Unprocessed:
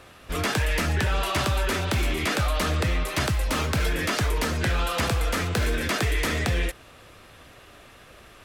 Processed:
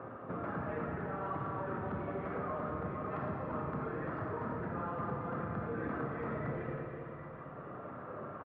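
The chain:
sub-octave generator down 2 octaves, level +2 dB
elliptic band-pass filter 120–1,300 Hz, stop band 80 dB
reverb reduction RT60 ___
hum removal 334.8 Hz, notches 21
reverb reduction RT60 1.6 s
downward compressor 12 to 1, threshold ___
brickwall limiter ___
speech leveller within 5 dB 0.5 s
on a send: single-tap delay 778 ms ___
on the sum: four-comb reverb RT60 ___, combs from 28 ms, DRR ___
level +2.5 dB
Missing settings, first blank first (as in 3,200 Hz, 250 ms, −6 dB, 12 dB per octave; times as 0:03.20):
0.67 s, −37 dBFS, −36.5 dBFS, −12 dB, 2.9 s, −3 dB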